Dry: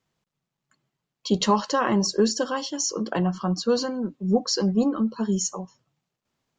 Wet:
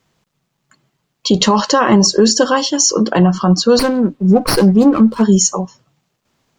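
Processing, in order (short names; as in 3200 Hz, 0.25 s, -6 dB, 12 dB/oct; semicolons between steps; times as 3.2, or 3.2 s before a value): maximiser +15 dB; 3.79–5.23 running maximum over 5 samples; gain -1 dB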